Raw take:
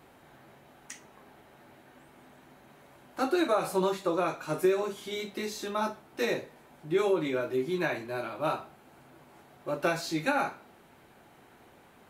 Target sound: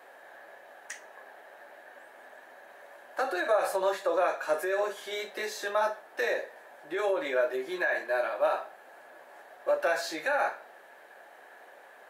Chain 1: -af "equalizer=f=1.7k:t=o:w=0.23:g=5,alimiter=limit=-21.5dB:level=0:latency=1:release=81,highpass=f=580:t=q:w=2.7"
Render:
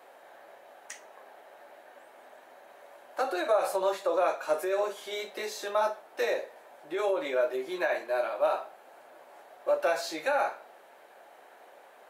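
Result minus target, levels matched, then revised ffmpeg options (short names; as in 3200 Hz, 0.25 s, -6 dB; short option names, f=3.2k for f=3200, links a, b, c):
2000 Hz band -4.0 dB
-af "equalizer=f=1.7k:t=o:w=0.23:g=15.5,alimiter=limit=-21.5dB:level=0:latency=1:release=81,highpass=f=580:t=q:w=2.7"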